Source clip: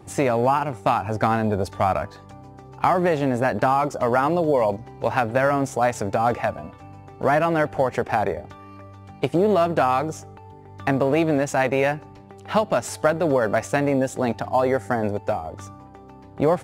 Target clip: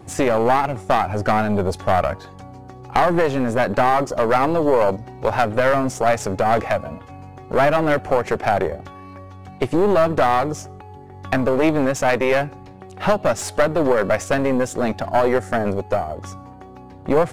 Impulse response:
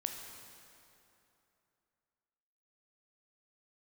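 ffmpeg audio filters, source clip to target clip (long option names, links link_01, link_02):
-af "asetrate=42336,aresample=44100,aeval=exprs='(tanh(5.62*val(0)+0.55)-tanh(0.55))/5.62':channel_layout=same,volume=6.5dB"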